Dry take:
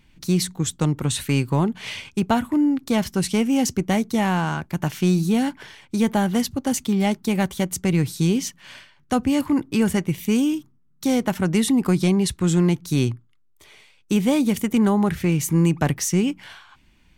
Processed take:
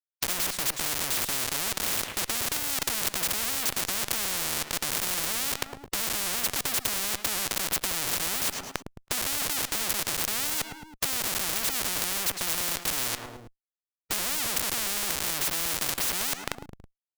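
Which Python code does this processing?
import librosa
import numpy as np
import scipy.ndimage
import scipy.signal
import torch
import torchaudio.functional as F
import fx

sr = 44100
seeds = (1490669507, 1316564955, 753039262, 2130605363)

p1 = fx.law_mismatch(x, sr, coded='mu')
p2 = fx.peak_eq(p1, sr, hz=300.0, db=11.5, octaves=1.0)
p3 = fx.schmitt(p2, sr, flips_db=-29.0)
p4 = fx.tilt_shelf(p3, sr, db=3.5, hz=970.0)
p5 = p4 + fx.echo_feedback(p4, sr, ms=108, feedback_pct=41, wet_db=-21.0, dry=0)
p6 = fx.spectral_comp(p5, sr, ratio=10.0)
y = p6 * 10.0 ** (-3.0 / 20.0)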